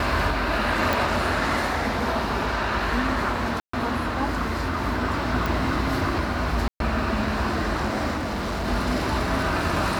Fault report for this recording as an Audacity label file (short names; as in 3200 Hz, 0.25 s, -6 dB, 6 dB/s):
0.930000	0.930000	pop
3.600000	3.730000	gap 0.134 s
5.460000	5.460000	pop
6.680000	6.800000	gap 0.122 s
8.160000	8.670000	clipped -24 dBFS